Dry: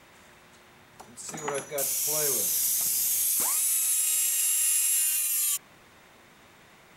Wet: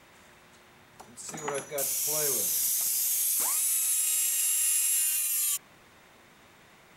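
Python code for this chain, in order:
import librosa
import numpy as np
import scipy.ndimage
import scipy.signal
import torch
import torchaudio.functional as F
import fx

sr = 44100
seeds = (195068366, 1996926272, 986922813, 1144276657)

y = fx.low_shelf(x, sr, hz=260.0, db=-10.5, at=(2.69, 3.43))
y = y * 10.0 ** (-1.5 / 20.0)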